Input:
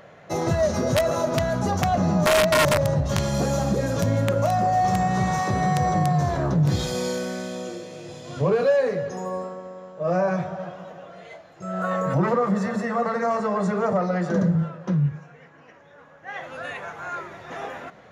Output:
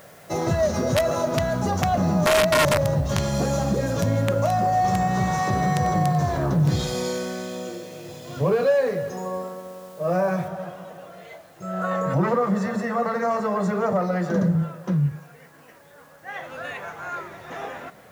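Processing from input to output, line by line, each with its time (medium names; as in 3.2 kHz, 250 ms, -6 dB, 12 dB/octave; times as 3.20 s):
5.31–7.57 s: bit-crushed delay 94 ms, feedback 35%, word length 8-bit, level -13.5 dB
10.48 s: noise floor step -54 dB -61 dB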